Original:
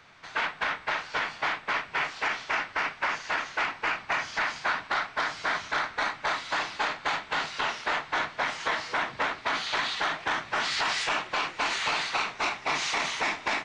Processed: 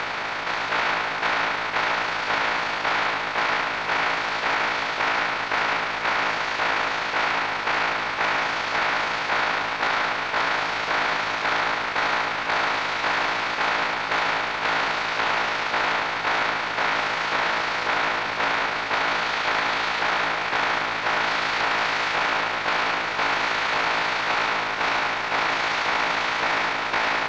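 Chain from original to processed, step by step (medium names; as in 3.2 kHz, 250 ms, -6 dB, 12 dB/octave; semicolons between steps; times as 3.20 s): spectral levelling over time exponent 0.2; granular stretch 2×, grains 72 ms; distance through air 150 m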